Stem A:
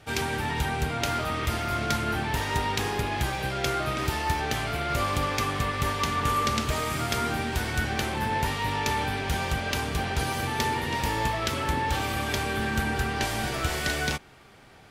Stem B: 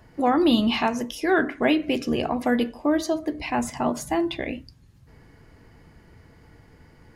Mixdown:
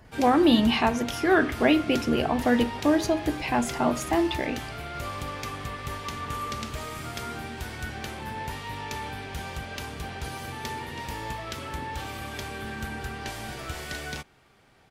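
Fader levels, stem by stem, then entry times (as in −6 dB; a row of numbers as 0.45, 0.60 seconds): −7.5, 0.0 decibels; 0.05, 0.00 seconds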